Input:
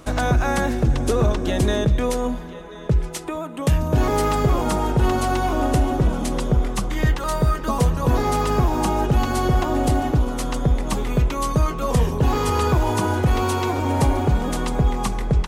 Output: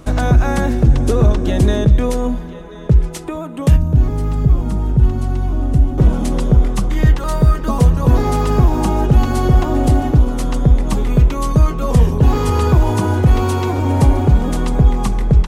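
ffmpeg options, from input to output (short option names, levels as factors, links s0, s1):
-filter_complex "[0:a]asettb=1/sr,asplit=3[s0][s1][s2];[s0]atrim=end=3.764[s3];[s1]atrim=start=3.76:end=5.98,asetpts=PTS-STARTPTS,afade=t=in:d=0.004:c=qsin,afade=t=out:st=2.216:d=0.004:c=qsin,acrossover=split=230[s4][s5];[s5]acompressor=threshold=0.00708:ratio=2[s6];[s4][s6]amix=inputs=2:normalize=0[s7];[s2]atrim=start=5.976[s8];[s3][s7]acrossfade=d=0.004:c1=hsin:c2=qsin[s9];[s9][s8]acrossfade=d=0.004:c1=qsin:c2=hsin,lowshelf=f=330:g=8.5"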